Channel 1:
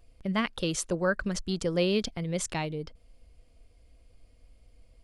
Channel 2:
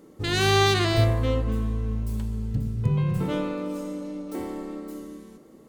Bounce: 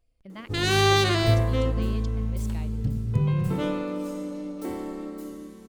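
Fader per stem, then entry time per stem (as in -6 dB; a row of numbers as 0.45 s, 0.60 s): -13.5 dB, 0.0 dB; 0.00 s, 0.30 s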